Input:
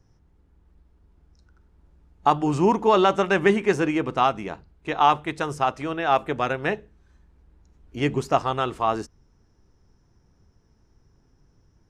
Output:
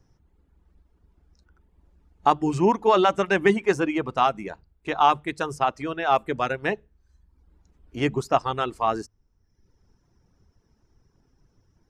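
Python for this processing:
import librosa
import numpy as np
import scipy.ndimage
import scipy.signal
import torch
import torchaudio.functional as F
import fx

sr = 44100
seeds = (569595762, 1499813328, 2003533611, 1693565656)

y = fx.hum_notches(x, sr, base_hz=50, count=3)
y = fx.dereverb_blind(y, sr, rt60_s=0.82)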